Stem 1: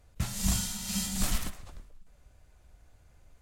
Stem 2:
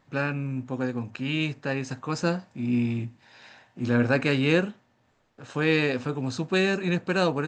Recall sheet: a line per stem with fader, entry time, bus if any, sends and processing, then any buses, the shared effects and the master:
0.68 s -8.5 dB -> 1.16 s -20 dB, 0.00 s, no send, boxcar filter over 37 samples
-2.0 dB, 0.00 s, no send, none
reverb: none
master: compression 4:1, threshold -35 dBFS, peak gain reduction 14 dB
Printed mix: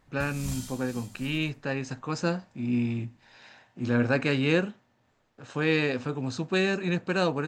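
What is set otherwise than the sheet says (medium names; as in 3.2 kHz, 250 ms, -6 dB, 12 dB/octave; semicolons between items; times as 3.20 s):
stem 1: missing boxcar filter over 37 samples; master: missing compression 4:1, threshold -35 dBFS, peak gain reduction 14 dB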